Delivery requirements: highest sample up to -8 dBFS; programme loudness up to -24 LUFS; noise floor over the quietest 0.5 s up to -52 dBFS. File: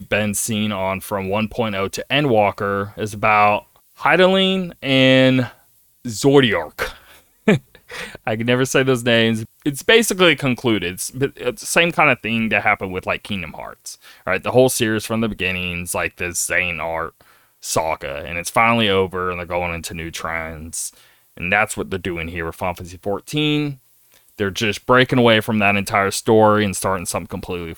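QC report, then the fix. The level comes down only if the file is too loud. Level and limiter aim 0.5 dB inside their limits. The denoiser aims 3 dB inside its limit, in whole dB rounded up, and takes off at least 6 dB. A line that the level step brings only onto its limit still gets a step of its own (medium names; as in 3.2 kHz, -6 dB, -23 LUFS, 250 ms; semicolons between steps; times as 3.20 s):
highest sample -1.5 dBFS: fail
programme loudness -18.5 LUFS: fail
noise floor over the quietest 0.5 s -55 dBFS: pass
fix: trim -6 dB; peak limiter -8.5 dBFS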